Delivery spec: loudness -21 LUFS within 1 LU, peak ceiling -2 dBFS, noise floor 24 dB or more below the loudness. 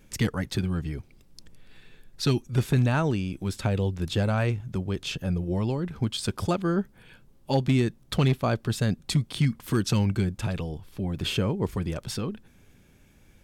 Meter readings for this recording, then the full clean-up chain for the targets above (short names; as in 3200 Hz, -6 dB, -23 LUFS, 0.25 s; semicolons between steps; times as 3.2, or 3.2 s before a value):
clipped 0.3%; flat tops at -15.5 dBFS; loudness -27.5 LUFS; peak -15.5 dBFS; loudness target -21.0 LUFS
-> clip repair -15.5 dBFS; gain +6.5 dB